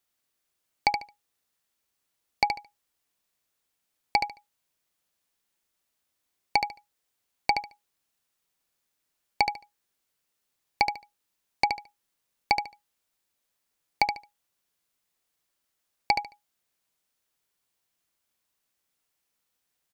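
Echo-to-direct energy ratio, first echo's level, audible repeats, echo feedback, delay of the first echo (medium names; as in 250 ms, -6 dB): -6.5 dB, -6.5 dB, 3, 20%, 73 ms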